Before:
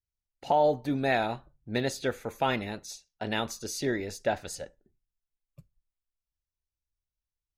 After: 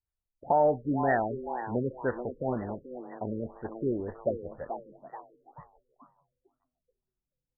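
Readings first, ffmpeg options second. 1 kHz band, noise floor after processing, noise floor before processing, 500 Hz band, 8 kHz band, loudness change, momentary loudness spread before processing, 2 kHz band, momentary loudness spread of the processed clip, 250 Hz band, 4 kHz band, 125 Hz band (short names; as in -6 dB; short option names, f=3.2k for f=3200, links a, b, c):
0.0 dB, under -85 dBFS, under -85 dBFS, 0.0 dB, under -40 dB, -1.0 dB, 15 LU, -5.0 dB, 16 LU, +0.5 dB, under -40 dB, 0.0 dB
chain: -filter_complex "[0:a]asplit=6[a][b][c][d][e][f];[b]adelay=433,afreqshift=120,volume=-9dB[g];[c]adelay=866,afreqshift=240,volume=-16.5dB[h];[d]adelay=1299,afreqshift=360,volume=-24.1dB[i];[e]adelay=1732,afreqshift=480,volume=-31.6dB[j];[f]adelay=2165,afreqshift=600,volume=-39.1dB[k];[a][g][h][i][j][k]amix=inputs=6:normalize=0,afftfilt=real='re*lt(b*sr/1024,520*pow(2000/520,0.5+0.5*sin(2*PI*2*pts/sr)))':imag='im*lt(b*sr/1024,520*pow(2000/520,0.5+0.5*sin(2*PI*2*pts/sr)))':win_size=1024:overlap=0.75"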